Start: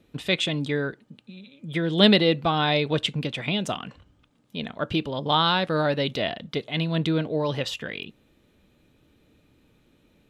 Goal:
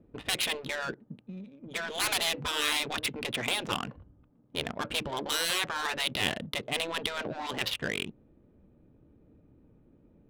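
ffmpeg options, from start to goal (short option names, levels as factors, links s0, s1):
-af "adynamicsmooth=sensitivity=5.5:basefreq=730,afftfilt=real='re*lt(hypot(re,im),0.141)':imag='im*lt(hypot(re,im),0.141)':win_size=1024:overlap=0.75,volume=1.33"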